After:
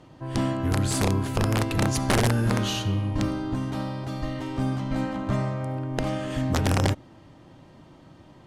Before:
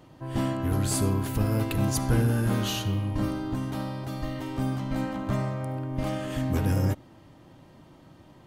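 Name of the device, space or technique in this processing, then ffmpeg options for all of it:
overflowing digital effects unit: -af "aeval=exprs='(mod(6.68*val(0)+1,2)-1)/6.68':c=same,lowpass=8700,volume=1.26"

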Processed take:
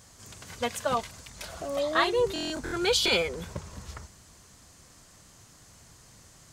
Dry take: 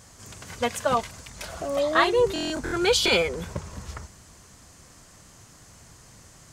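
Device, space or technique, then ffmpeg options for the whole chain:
presence and air boost: -af "equalizer=f=3900:t=o:w=0.77:g=3,highshelf=f=12000:g=5,volume=0.596"

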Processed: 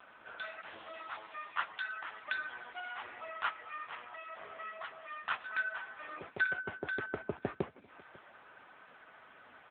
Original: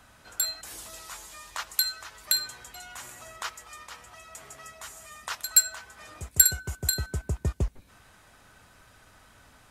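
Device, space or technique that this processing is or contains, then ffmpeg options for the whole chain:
satellite phone: -af "highpass=310,lowpass=3000,aecho=1:1:546:0.0708,volume=1.78" -ar 8000 -c:a libopencore_amrnb -b:a 6700

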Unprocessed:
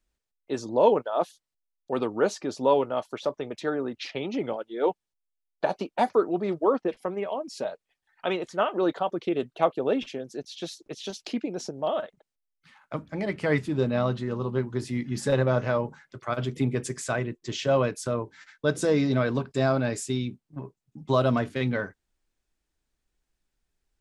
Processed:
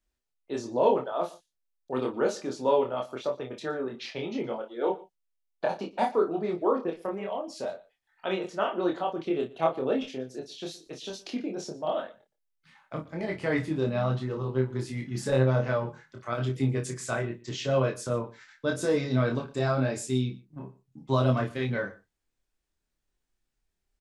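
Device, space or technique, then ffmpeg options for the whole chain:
double-tracked vocal: -filter_complex "[0:a]asplit=2[s0][s1];[s1]adelay=31,volume=0.376[s2];[s0][s2]amix=inputs=2:normalize=0,flanger=delay=22.5:depth=3.5:speed=0.9,aecho=1:1:118:0.0944"

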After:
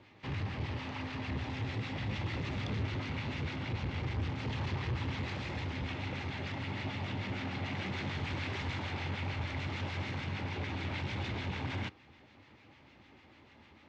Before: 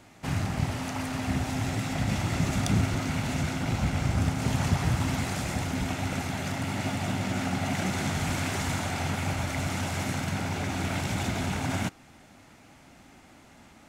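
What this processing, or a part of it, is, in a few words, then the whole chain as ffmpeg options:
guitar amplifier with harmonic tremolo: -filter_complex "[0:a]acrossover=split=1200[s0][s1];[s0]aeval=exprs='val(0)*(1-0.5/2+0.5/2*cos(2*PI*6.7*n/s))':c=same[s2];[s1]aeval=exprs='val(0)*(1-0.5/2-0.5/2*cos(2*PI*6.7*n/s))':c=same[s3];[s2][s3]amix=inputs=2:normalize=0,asoftclip=type=tanh:threshold=0.0398,highpass=79,equalizer=f=79:t=q:w=4:g=4,equalizer=f=170:t=q:w=4:g=-9,equalizer=f=250:t=q:w=4:g=-5,equalizer=f=690:t=q:w=4:g=-10,equalizer=f=1400:t=q:w=4:g=-7,lowpass=f=4100:w=0.5412,lowpass=f=4100:w=1.3066"

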